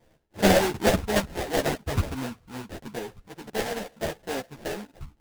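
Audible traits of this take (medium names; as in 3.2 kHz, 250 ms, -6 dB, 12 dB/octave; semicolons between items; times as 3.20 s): tremolo saw down 2.6 Hz, depth 50%; aliases and images of a low sample rate 1.2 kHz, jitter 20%; a shimmering, thickened sound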